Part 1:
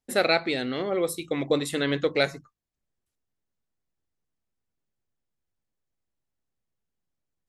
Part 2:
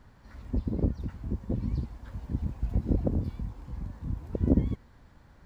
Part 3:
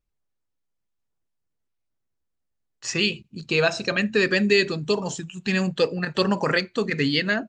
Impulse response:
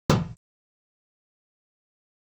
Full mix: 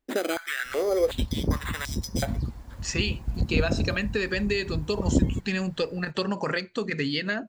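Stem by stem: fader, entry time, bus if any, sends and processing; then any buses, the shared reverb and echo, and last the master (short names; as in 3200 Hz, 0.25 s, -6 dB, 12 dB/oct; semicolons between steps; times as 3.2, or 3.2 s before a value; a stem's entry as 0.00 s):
-1.0 dB, 0.00 s, no send, compressor 6:1, threshold -26 dBFS, peak gain reduction 9.5 dB; sample-and-hold 8×; stepped high-pass 2.7 Hz 300–5300 Hz
+1.5 dB, 0.65 s, no send, high shelf 5400 Hz +9 dB
-2.0 dB, 0.00 s, no send, compressor 4:1, threshold -22 dBFS, peak gain reduction 7.5 dB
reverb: off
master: dry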